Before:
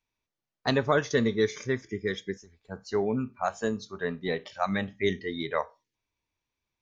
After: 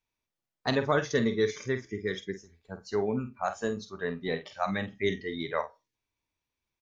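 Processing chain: doubling 48 ms -10 dB; trim -2 dB

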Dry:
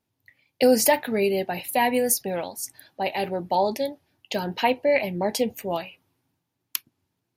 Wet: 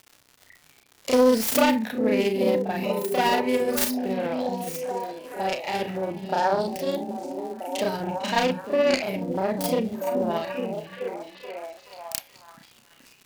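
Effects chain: self-modulated delay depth 0.27 ms; crackle 240 per s -37 dBFS; repeats whose band climbs or falls 238 ms, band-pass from 200 Hz, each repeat 0.7 oct, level -0.5 dB; granular stretch 1.8×, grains 142 ms

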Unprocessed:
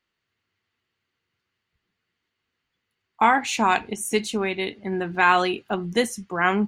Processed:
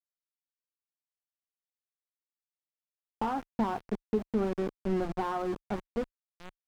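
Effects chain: fade out at the end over 1.48 s; Chebyshev low-pass 1.4 kHz, order 5; hum notches 60/120/180/240/300 Hz; small samples zeroed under -30 dBFS; compression 6:1, threshold -23 dBFS, peak gain reduction 9.5 dB; tilt EQ -2.5 dB/octave; slew-rate limiter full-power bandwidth 59 Hz; trim -4.5 dB

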